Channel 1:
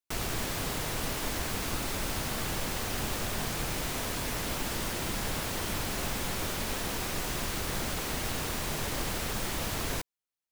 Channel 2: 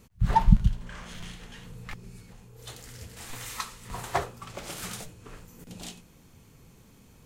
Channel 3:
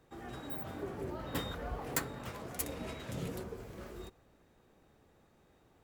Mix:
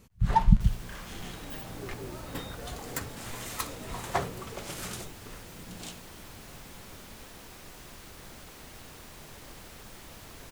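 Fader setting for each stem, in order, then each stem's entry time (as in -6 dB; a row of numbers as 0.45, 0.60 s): -14.5, -1.5, -1.5 dB; 0.50, 0.00, 1.00 s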